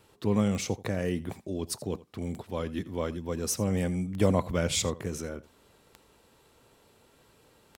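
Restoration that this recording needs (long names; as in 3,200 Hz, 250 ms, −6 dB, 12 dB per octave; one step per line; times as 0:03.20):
click removal
echo removal 83 ms −19 dB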